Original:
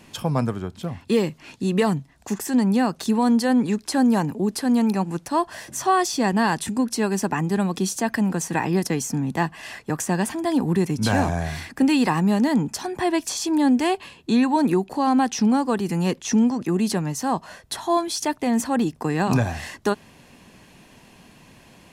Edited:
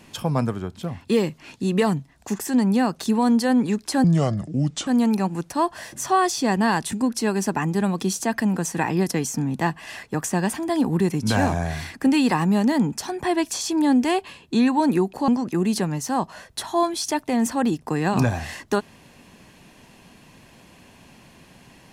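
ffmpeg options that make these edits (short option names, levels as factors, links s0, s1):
-filter_complex "[0:a]asplit=4[s0][s1][s2][s3];[s0]atrim=end=4.044[s4];[s1]atrim=start=4.04:end=4.63,asetpts=PTS-STARTPTS,asetrate=31311,aresample=44100,atrim=end_sample=36646,asetpts=PTS-STARTPTS[s5];[s2]atrim=start=4.626:end=15.042[s6];[s3]atrim=start=16.418[s7];[s4][s5]acrossfade=d=0.004:c1=hsin:c2=hsin[s8];[s8][s6]acrossfade=d=0.004:c1=hsin:c2=hsin[s9];[s9][s7]acrossfade=d=0.004:c1=hsin:c2=hsin"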